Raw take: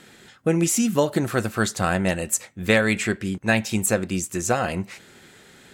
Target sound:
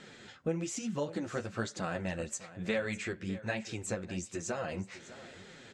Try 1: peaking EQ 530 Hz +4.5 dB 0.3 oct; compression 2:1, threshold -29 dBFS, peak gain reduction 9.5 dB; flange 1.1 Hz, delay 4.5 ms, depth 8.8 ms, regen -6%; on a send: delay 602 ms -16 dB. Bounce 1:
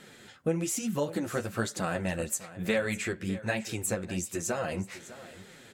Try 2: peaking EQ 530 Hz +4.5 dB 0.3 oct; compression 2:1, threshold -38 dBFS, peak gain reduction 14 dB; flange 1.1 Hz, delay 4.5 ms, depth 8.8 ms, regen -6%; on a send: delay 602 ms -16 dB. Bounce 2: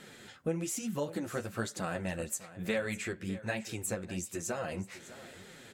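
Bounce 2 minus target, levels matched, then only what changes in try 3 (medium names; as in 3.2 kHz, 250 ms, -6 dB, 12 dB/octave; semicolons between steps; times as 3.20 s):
8 kHz band +2.5 dB
add first: low-pass 7.1 kHz 24 dB/octave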